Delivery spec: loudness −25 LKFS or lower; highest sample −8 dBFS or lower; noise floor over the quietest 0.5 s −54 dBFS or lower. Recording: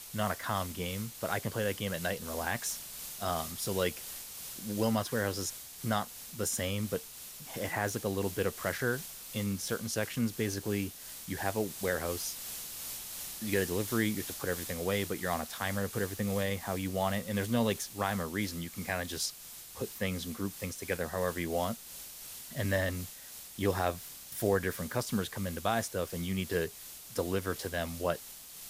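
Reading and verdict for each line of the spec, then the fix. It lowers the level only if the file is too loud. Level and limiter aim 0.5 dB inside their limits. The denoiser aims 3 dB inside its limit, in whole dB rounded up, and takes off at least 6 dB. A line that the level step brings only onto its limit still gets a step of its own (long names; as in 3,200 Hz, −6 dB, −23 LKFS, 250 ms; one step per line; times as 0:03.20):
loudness −34.5 LKFS: in spec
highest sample −15.5 dBFS: in spec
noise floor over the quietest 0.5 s −48 dBFS: out of spec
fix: broadband denoise 9 dB, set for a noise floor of −48 dBFS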